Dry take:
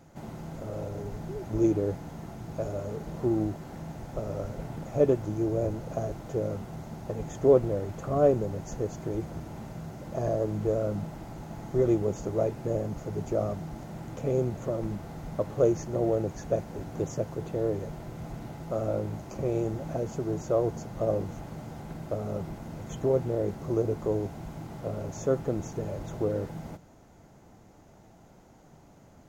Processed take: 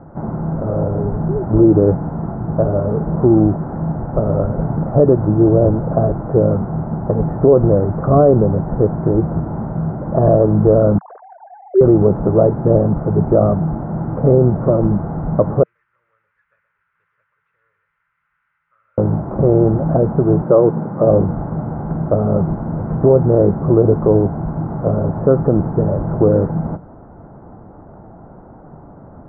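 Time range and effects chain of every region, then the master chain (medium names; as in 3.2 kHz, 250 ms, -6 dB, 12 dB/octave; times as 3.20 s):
10.98–11.81 s: formants replaced by sine waves + high-pass 390 Hz + comb 1.9 ms, depth 33%
15.63–18.98 s: inverse Chebyshev high-pass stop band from 780 Hz, stop band 60 dB + delay 123 ms -9.5 dB
20.44–21.07 s: high-pass 140 Hz 24 dB/octave + band-stop 690 Hz, Q 10
whole clip: steep low-pass 1.4 kHz 36 dB/octave; dynamic bell 170 Hz, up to +5 dB, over -44 dBFS, Q 1.9; loudness maximiser +17 dB; trim -1 dB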